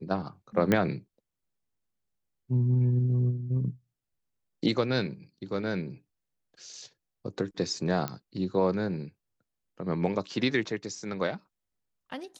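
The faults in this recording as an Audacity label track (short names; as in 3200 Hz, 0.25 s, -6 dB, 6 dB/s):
0.720000	0.720000	pop -11 dBFS
8.080000	8.080000	pop -16 dBFS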